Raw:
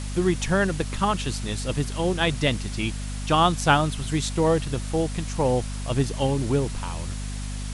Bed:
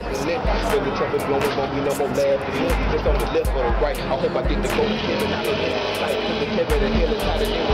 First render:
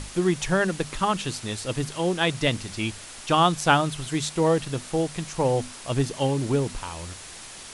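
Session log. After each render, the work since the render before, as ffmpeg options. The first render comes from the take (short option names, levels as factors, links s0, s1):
-af "bandreject=f=50:t=h:w=6,bandreject=f=100:t=h:w=6,bandreject=f=150:t=h:w=6,bandreject=f=200:t=h:w=6,bandreject=f=250:t=h:w=6"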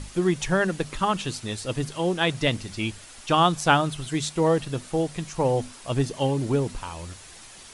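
-af "afftdn=nr=6:nf=-42"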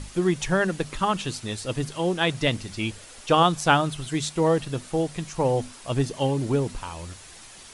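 -filter_complex "[0:a]asettb=1/sr,asplit=3[s0][s1][s2];[s0]atrim=end=2.904[s3];[s1]atrim=start=2.9:end=3.43,asetpts=PTS-STARTPTS,afade=t=in:d=0.004:c=qsin,afade=t=out:st=0.526:d=0.004:c=qsin,equalizer=f=490:t=o:w=0.47:g=8[s4];[s2]atrim=start=3.426[s5];[s3][s4]acrossfade=d=0.004:c1=hsin:c2=qsin[s6];[s6][s5]acrossfade=d=0.004:c1=qsin:c2=hsin"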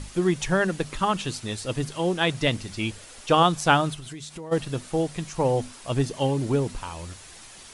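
-filter_complex "[0:a]asplit=3[s0][s1][s2];[s0]afade=t=out:st=3.94:d=0.02[s3];[s1]acompressor=threshold=0.0178:ratio=8:attack=3.2:release=140:knee=1:detection=peak,afade=t=in:st=3.94:d=0.02,afade=t=out:st=4.51:d=0.02[s4];[s2]afade=t=in:st=4.51:d=0.02[s5];[s3][s4][s5]amix=inputs=3:normalize=0"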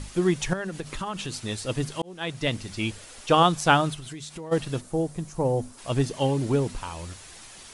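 -filter_complex "[0:a]asettb=1/sr,asplit=3[s0][s1][s2];[s0]atrim=end=0.534[s3];[s1]atrim=start=0.53:end=1.41,asetpts=PTS-STARTPTS,afade=t=in:d=0.004:c=qsin,afade=t=out:st=0.876:d=0.004:c=qsin,acompressor=threshold=0.0398:ratio=6:attack=3.2:release=140:knee=1:detection=peak[s4];[s2]atrim=start=1.406[s5];[s3][s4]acrossfade=d=0.004:c1=hsin:c2=qsin[s6];[s6][s5]acrossfade=d=0.004:c1=qsin:c2=hsin,asplit=3[s7][s8][s9];[s7]afade=t=out:st=4.8:d=0.02[s10];[s8]equalizer=f=2800:w=0.51:g=-13,afade=t=in:st=4.8:d=0.02,afade=t=out:st=5.77:d=0.02[s11];[s9]afade=t=in:st=5.77:d=0.02[s12];[s10][s11][s12]amix=inputs=3:normalize=0,asplit=2[s13][s14];[s13]atrim=end=2.02,asetpts=PTS-STARTPTS,afade=t=out:st=2.016:d=0.004:c=hsin[s15];[s14]atrim=start=2.02,asetpts=PTS-STARTPTS,afade=t=in:d=0.92:c=qsin[s16];[s15][s16]concat=n=2:v=0:a=1"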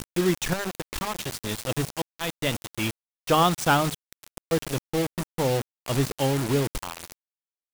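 -af "asoftclip=type=tanh:threshold=0.316,acrusher=bits=4:mix=0:aa=0.000001"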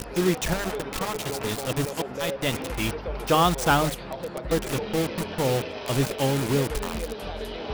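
-filter_complex "[1:a]volume=0.237[s0];[0:a][s0]amix=inputs=2:normalize=0"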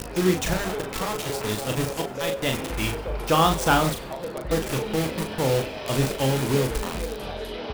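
-filter_complex "[0:a]asplit=2[s0][s1];[s1]adelay=38,volume=0.531[s2];[s0][s2]amix=inputs=2:normalize=0,asplit=5[s3][s4][s5][s6][s7];[s4]adelay=95,afreqshift=-94,volume=0.112[s8];[s5]adelay=190,afreqshift=-188,volume=0.0603[s9];[s6]adelay=285,afreqshift=-282,volume=0.0327[s10];[s7]adelay=380,afreqshift=-376,volume=0.0176[s11];[s3][s8][s9][s10][s11]amix=inputs=5:normalize=0"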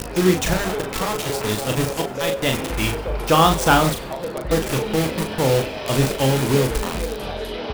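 -af "volume=1.68"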